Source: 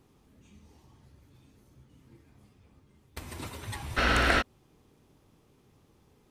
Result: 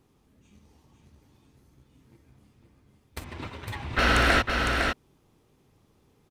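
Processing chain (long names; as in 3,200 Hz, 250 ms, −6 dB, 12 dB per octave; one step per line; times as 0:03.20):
0:03.24–0:03.99: Chebyshev low-pass filter 2,900 Hz, order 2
leveller curve on the samples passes 1
single-tap delay 507 ms −4.5 dB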